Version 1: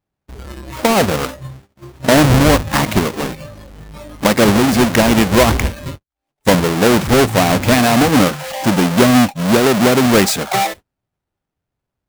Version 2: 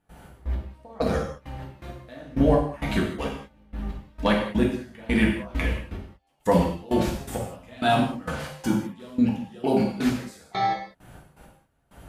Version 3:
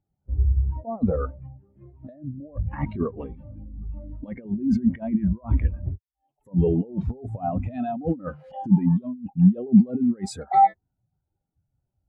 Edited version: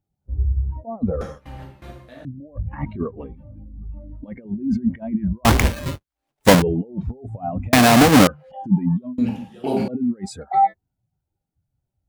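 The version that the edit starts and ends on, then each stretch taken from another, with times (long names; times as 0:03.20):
3
0:01.21–0:02.25: punch in from 2
0:05.45–0:06.62: punch in from 1
0:07.73–0:08.27: punch in from 1
0:09.18–0:09.88: punch in from 2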